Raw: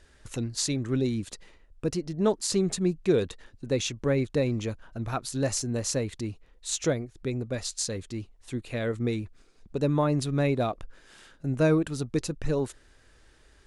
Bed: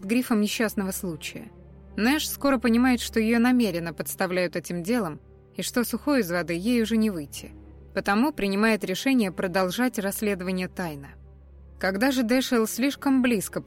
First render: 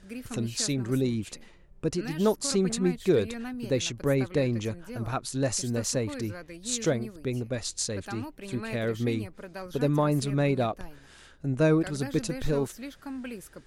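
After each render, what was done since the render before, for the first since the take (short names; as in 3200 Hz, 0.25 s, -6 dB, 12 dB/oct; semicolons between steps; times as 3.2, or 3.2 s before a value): add bed -16 dB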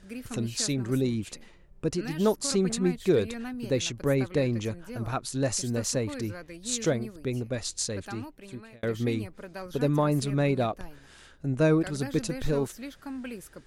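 7.71–8.83 fade out equal-power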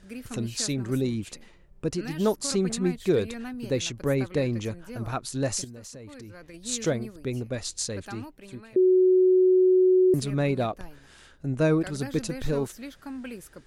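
5.64–6.54 compressor 8:1, threshold -40 dBFS; 8.76–10.14 bleep 370 Hz -15.5 dBFS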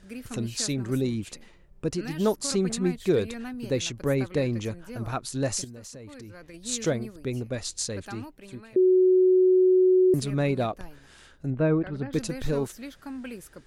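11.5–12.13 air absorption 440 m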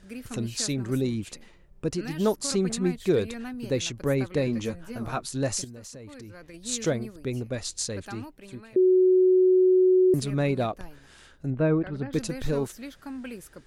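4.46–5.26 doubler 13 ms -5 dB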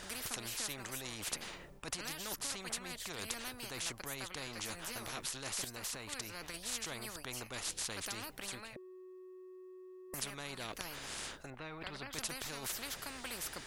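reverse; compressor 6:1, threshold -32 dBFS, peak gain reduction 13.5 dB; reverse; spectral compressor 4:1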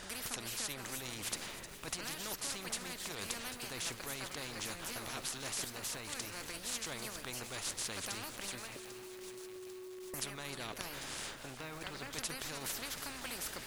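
echo with dull and thin repeats by turns 0.154 s, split 1900 Hz, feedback 77%, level -10 dB; lo-fi delay 0.795 s, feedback 80%, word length 8-bit, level -10.5 dB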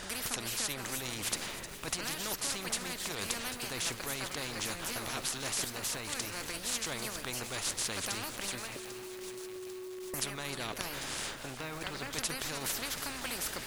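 gain +5 dB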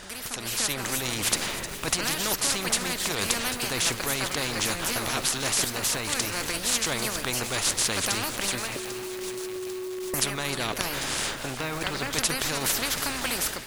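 AGC gain up to 9.5 dB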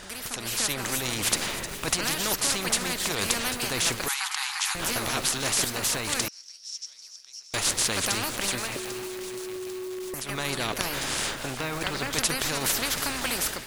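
4.08–4.75 brick-wall FIR band-pass 750–12000 Hz; 6.28–7.54 band-pass 5500 Hz, Q 14; 9.06–10.29 compressor, threshold -31 dBFS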